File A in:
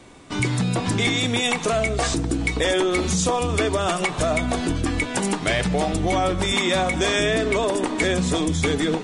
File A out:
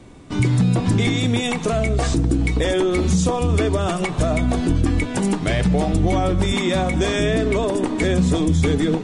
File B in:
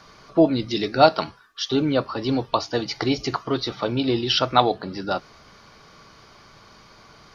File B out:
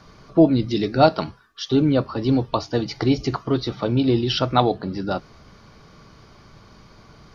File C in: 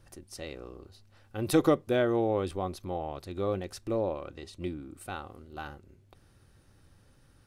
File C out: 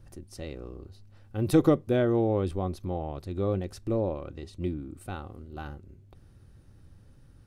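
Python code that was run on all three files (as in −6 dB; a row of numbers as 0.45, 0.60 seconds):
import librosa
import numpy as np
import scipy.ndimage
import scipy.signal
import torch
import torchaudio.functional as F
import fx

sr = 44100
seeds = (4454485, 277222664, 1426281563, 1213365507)

y = fx.low_shelf(x, sr, hz=380.0, db=11.5)
y = F.gain(torch.from_numpy(y), -3.5).numpy()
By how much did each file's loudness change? +2.0, +1.5, +2.5 LU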